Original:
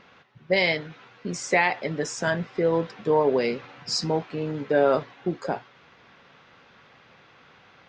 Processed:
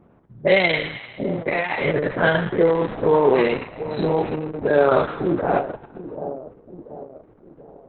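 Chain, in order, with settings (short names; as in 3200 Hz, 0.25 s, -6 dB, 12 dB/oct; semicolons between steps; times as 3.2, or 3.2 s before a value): spectral dilation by 0.12 s; 3–3.64 gate with hold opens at -17 dBFS; low-pass opened by the level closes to 420 Hz, open at -13 dBFS; 0.74–1.83 compressor 4:1, threshold -22 dBFS, peak gain reduction 9.5 dB; 4.65–5.12 dynamic EQ 3000 Hz, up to -3 dB, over -47 dBFS, Q 4.3; split-band echo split 800 Hz, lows 0.731 s, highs 0.141 s, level -12 dB; gain +3 dB; Opus 6 kbps 48000 Hz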